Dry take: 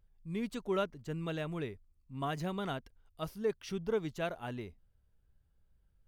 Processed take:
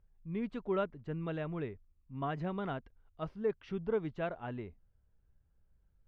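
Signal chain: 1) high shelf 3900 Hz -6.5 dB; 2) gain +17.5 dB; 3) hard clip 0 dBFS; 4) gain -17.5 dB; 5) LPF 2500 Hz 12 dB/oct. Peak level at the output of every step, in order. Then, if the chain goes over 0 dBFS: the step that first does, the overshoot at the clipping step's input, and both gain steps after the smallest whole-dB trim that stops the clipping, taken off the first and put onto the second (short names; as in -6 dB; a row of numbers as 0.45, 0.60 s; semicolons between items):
-21.0, -3.5, -3.5, -21.0, -21.5 dBFS; no overload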